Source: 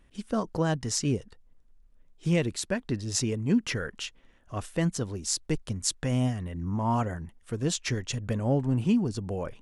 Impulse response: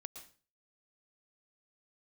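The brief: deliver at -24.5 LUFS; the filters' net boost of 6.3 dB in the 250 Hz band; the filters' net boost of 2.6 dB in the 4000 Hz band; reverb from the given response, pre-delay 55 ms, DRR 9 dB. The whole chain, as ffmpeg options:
-filter_complex "[0:a]equalizer=f=250:t=o:g=7.5,equalizer=f=4k:t=o:g=3.5,asplit=2[a][b];[1:a]atrim=start_sample=2205,adelay=55[c];[b][c]afir=irnorm=-1:irlink=0,volume=-4.5dB[d];[a][d]amix=inputs=2:normalize=0"

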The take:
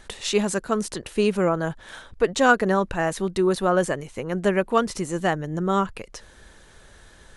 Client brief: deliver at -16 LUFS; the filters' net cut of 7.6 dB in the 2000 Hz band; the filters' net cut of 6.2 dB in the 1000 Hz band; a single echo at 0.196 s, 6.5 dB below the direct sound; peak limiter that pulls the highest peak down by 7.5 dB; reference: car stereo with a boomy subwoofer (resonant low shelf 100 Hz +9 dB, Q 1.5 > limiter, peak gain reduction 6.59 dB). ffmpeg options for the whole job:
-af "equalizer=f=1k:t=o:g=-6.5,equalizer=f=2k:t=o:g=-8,alimiter=limit=-15.5dB:level=0:latency=1,lowshelf=f=100:t=q:w=1.5:g=9,aecho=1:1:196:0.473,volume=14dB,alimiter=limit=-5.5dB:level=0:latency=1"

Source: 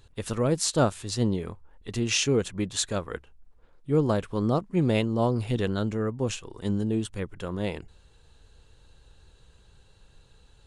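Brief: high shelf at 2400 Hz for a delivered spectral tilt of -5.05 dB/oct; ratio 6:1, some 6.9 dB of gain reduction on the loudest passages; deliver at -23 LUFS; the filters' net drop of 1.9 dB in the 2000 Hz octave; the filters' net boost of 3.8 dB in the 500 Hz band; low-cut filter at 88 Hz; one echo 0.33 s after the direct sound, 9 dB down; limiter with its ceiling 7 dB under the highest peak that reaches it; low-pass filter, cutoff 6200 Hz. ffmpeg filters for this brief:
-af "highpass=88,lowpass=6.2k,equalizer=f=500:t=o:g=4.5,equalizer=f=2k:t=o:g=-7,highshelf=f=2.4k:g=6,acompressor=threshold=-23dB:ratio=6,alimiter=limit=-19dB:level=0:latency=1,aecho=1:1:330:0.355,volume=7.5dB"

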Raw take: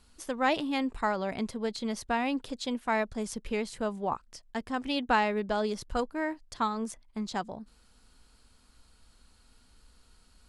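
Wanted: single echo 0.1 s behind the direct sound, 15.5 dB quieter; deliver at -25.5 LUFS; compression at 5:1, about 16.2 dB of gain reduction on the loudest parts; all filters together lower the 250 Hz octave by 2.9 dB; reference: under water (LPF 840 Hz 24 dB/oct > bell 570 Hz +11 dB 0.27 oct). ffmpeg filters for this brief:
-af "equalizer=f=250:t=o:g=-3.5,acompressor=threshold=-40dB:ratio=5,lowpass=f=840:w=0.5412,lowpass=f=840:w=1.3066,equalizer=f=570:t=o:w=0.27:g=11,aecho=1:1:100:0.168,volume=17.5dB"

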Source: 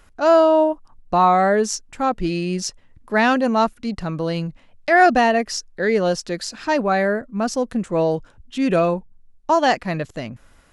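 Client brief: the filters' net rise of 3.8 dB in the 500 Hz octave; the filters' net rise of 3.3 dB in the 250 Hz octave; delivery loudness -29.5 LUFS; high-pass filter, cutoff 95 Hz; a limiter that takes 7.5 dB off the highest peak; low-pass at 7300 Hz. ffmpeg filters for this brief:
-af "highpass=95,lowpass=7.3k,equalizer=f=250:t=o:g=3,equalizer=f=500:t=o:g=4.5,volume=-10dB,alimiter=limit=-19dB:level=0:latency=1"

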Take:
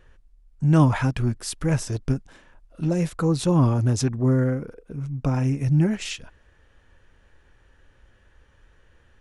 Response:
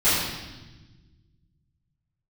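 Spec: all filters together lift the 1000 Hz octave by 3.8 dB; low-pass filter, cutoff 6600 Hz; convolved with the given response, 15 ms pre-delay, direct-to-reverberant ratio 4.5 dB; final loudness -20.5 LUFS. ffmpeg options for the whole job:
-filter_complex "[0:a]lowpass=6.6k,equalizer=f=1k:t=o:g=4.5,asplit=2[a][b];[1:a]atrim=start_sample=2205,adelay=15[c];[b][c]afir=irnorm=-1:irlink=0,volume=-22.5dB[d];[a][d]amix=inputs=2:normalize=0,volume=0.5dB"

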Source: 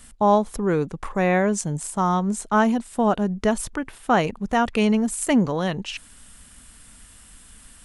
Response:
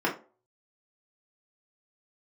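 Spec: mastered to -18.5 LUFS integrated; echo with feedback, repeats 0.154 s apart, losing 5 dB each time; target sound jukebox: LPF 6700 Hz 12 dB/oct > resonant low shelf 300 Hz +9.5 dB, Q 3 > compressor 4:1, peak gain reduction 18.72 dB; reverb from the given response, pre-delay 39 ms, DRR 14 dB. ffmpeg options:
-filter_complex "[0:a]aecho=1:1:154|308|462|616|770|924|1078:0.562|0.315|0.176|0.0988|0.0553|0.031|0.0173,asplit=2[a][b];[1:a]atrim=start_sample=2205,adelay=39[c];[b][c]afir=irnorm=-1:irlink=0,volume=-26dB[d];[a][d]amix=inputs=2:normalize=0,lowpass=6.7k,lowshelf=f=300:t=q:w=3:g=9.5,acompressor=threshold=-22dB:ratio=4,volume=4.5dB"

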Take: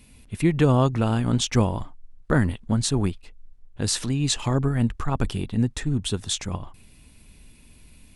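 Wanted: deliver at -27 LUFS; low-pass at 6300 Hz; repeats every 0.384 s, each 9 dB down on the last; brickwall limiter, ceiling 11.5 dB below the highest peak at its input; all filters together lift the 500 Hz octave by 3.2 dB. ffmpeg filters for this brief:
-af "lowpass=6.3k,equalizer=f=500:t=o:g=4,alimiter=limit=-17dB:level=0:latency=1,aecho=1:1:384|768|1152|1536:0.355|0.124|0.0435|0.0152,volume=1dB"

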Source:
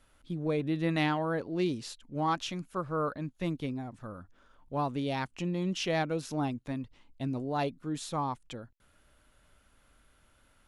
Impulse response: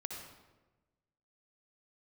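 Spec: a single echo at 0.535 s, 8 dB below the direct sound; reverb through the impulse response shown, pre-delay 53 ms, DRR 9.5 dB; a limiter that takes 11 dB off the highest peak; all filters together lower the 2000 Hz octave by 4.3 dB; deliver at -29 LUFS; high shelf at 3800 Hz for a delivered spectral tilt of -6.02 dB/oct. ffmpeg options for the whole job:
-filter_complex "[0:a]equalizer=f=2k:t=o:g=-4,highshelf=f=3.8k:g=-6,alimiter=level_in=4.5dB:limit=-24dB:level=0:latency=1,volume=-4.5dB,aecho=1:1:535:0.398,asplit=2[a][b];[1:a]atrim=start_sample=2205,adelay=53[c];[b][c]afir=irnorm=-1:irlink=0,volume=-8.5dB[d];[a][d]amix=inputs=2:normalize=0,volume=8.5dB"

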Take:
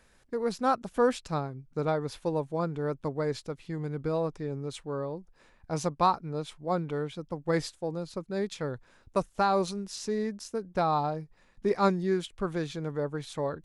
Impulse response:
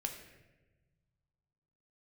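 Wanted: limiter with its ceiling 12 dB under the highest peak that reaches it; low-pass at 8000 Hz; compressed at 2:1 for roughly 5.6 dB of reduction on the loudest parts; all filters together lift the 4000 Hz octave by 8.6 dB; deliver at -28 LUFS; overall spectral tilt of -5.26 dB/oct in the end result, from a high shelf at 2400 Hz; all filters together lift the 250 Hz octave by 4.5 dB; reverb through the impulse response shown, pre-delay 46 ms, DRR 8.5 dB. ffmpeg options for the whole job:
-filter_complex "[0:a]lowpass=8k,equalizer=f=250:t=o:g=6.5,highshelf=f=2.4k:g=6,equalizer=f=4k:t=o:g=5,acompressor=threshold=-27dB:ratio=2,alimiter=level_in=2dB:limit=-24dB:level=0:latency=1,volume=-2dB,asplit=2[a][b];[1:a]atrim=start_sample=2205,adelay=46[c];[b][c]afir=irnorm=-1:irlink=0,volume=-8.5dB[d];[a][d]amix=inputs=2:normalize=0,volume=7dB"

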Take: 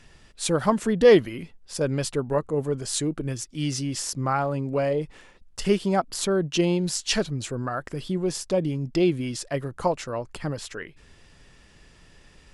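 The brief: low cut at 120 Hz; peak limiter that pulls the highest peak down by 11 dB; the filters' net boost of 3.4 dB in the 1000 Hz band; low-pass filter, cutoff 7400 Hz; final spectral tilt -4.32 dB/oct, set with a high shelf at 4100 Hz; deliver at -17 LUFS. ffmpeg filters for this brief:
-af "highpass=120,lowpass=7.4k,equalizer=f=1k:t=o:g=4,highshelf=f=4.1k:g=7,volume=10dB,alimiter=limit=-5dB:level=0:latency=1"

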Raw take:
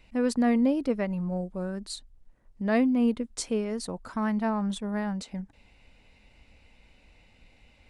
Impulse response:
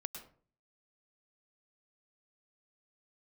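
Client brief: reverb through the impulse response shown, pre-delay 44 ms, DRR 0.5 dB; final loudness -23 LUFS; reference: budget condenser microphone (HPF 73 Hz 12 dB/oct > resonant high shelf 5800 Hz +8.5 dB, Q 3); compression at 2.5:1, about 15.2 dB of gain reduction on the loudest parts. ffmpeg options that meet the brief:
-filter_complex "[0:a]acompressor=threshold=-44dB:ratio=2.5,asplit=2[a][b];[1:a]atrim=start_sample=2205,adelay=44[c];[b][c]afir=irnorm=-1:irlink=0,volume=1.5dB[d];[a][d]amix=inputs=2:normalize=0,highpass=73,highshelf=f=5.8k:t=q:w=3:g=8.5,volume=14dB"

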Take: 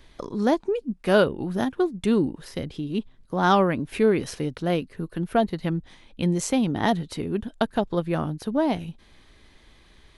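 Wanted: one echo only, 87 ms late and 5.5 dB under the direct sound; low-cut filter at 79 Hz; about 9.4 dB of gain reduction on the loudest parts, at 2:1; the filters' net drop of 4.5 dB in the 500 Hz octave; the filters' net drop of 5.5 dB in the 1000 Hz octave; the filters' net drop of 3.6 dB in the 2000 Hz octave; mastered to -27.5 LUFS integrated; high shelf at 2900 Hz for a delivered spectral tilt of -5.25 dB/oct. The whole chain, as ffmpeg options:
-af "highpass=79,equalizer=f=500:t=o:g=-4.5,equalizer=f=1k:t=o:g=-5.5,equalizer=f=2k:t=o:g=-4,highshelf=f=2.9k:g=5,acompressor=threshold=-36dB:ratio=2,aecho=1:1:87:0.531,volume=7dB"

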